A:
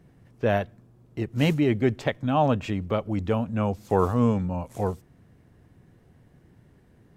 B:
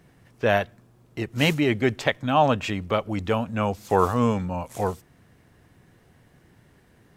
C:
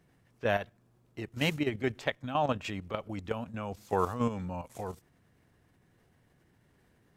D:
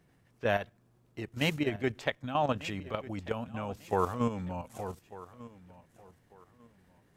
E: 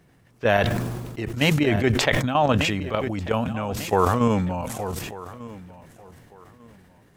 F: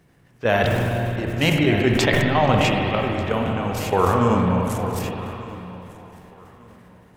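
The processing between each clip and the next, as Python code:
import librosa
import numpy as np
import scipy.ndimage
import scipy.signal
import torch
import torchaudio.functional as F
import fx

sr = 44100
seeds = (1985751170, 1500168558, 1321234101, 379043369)

y1 = fx.tilt_shelf(x, sr, db=-5.0, hz=660.0)
y1 = y1 * 10.0 ** (3.0 / 20.0)
y2 = fx.level_steps(y1, sr, step_db=10)
y2 = y2 * 10.0 ** (-6.5 / 20.0)
y3 = fx.echo_feedback(y2, sr, ms=1195, feedback_pct=27, wet_db=-18)
y4 = fx.sustainer(y3, sr, db_per_s=33.0)
y4 = y4 * 10.0 ** (8.5 / 20.0)
y5 = fx.rev_spring(y4, sr, rt60_s=3.1, pass_ms=(44, 50, 57), chirp_ms=65, drr_db=1.0)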